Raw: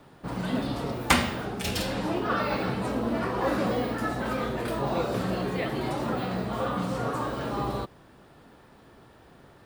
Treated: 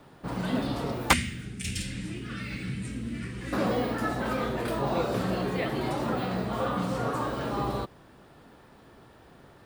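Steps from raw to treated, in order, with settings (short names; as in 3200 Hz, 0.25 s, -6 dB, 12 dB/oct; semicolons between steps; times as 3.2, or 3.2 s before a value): 1.13–3.53 EQ curve 150 Hz 0 dB, 310 Hz -9 dB, 670 Hz -27 dB, 960 Hz -27 dB, 2100 Hz -1 dB, 4300 Hz -7 dB, 8800 Hz +4 dB, 14000 Hz -15 dB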